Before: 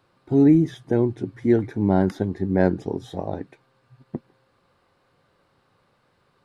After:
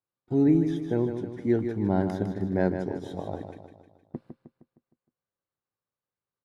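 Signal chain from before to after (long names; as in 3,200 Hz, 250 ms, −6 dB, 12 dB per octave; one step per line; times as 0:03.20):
noise gate −45 dBFS, range −26 dB
on a send: repeating echo 155 ms, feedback 49%, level −8 dB
on the sum: level −6 dB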